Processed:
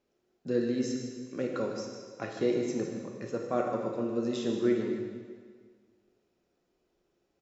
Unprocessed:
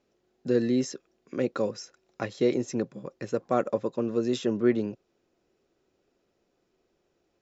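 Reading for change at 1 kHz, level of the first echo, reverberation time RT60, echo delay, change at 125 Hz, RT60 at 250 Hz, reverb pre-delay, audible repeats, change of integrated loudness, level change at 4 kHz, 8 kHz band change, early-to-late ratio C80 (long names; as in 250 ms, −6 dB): −3.0 dB, −12.0 dB, 1.7 s, 153 ms, −4.0 dB, 1.7 s, 7 ms, 1, −3.5 dB, −3.0 dB, can't be measured, 4.0 dB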